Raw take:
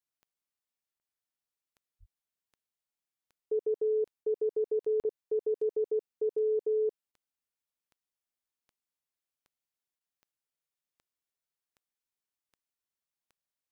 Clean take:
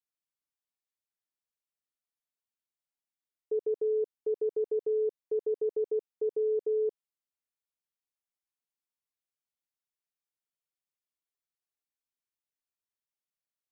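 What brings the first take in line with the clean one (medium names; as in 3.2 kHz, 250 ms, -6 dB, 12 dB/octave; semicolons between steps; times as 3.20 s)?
de-click; 1.99–2.11 s: high-pass 140 Hz 24 dB/octave; interpolate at 5.00 s, 38 ms; interpolate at 0.99/4.24/5.03/7.12/9.99 s, 16 ms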